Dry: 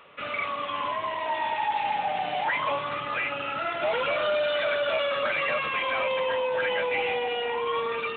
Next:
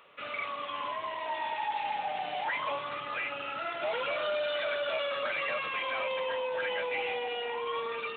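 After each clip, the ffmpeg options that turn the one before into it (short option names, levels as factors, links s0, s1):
-af "bass=f=250:g=-5,treble=f=4000:g=5,volume=0.501"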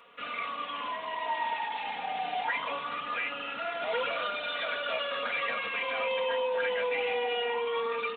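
-af "aecho=1:1:4.2:0.71"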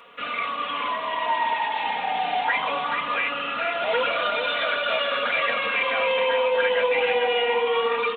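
-af "aecho=1:1:436:0.447,volume=2.37"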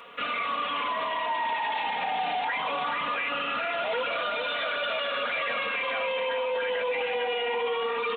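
-af "alimiter=limit=0.0668:level=0:latency=1:release=27,volume=1.26"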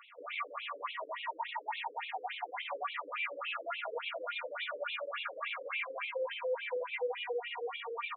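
-filter_complex "[0:a]asplit=2[s0][s1];[s1]aecho=0:1:12|75:0.473|0.282[s2];[s0][s2]amix=inputs=2:normalize=0,afftfilt=real='re*between(b*sr/1024,380*pow(3100/380,0.5+0.5*sin(2*PI*3.5*pts/sr))/1.41,380*pow(3100/380,0.5+0.5*sin(2*PI*3.5*pts/sr))*1.41)':imag='im*between(b*sr/1024,380*pow(3100/380,0.5+0.5*sin(2*PI*3.5*pts/sr))/1.41,380*pow(3100/380,0.5+0.5*sin(2*PI*3.5*pts/sr))*1.41)':win_size=1024:overlap=0.75,volume=0.531"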